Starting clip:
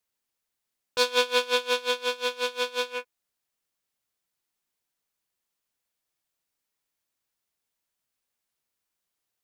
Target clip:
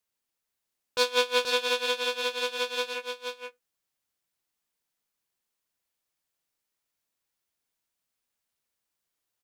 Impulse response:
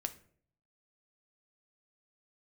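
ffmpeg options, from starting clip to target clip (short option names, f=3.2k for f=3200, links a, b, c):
-filter_complex "[0:a]aecho=1:1:479:0.501,asplit=2[a][b];[1:a]atrim=start_sample=2205,afade=t=out:st=0.14:d=0.01,atrim=end_sample=6615[c];[b][c]afir=irnorm=-1:irlink=0,volume=-13dB[d];[a][d]amix=inputs=2:normalize=0,volume=-3dB"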